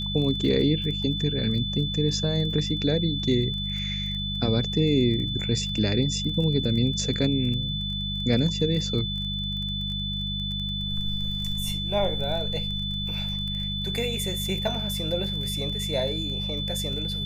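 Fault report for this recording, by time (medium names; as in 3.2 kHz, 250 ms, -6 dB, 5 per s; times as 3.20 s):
crackle 20 per s -33 dBFS
hum 50 Hz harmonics 4 -32 dBFS
whine 3.5 kHz -30 dBFS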